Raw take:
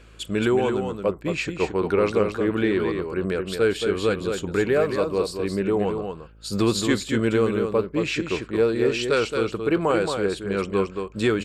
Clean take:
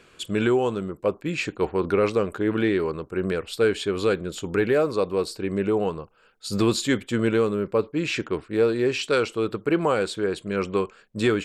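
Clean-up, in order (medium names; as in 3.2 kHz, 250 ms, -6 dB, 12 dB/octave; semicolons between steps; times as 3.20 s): de-hum 54.5 Hz, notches 11; inverse comb 223 ms -6 dB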